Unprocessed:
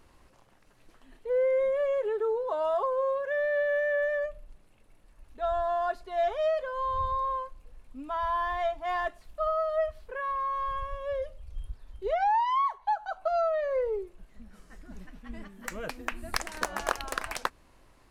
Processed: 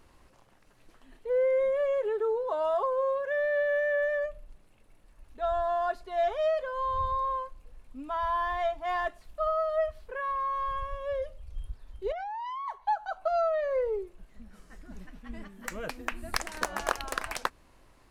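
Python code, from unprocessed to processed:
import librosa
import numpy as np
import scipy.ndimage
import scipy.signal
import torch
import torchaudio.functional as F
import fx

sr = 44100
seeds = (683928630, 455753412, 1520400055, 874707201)

y = fx.level_steps(x, sr, step_db=18, at=(12.12, 12.68))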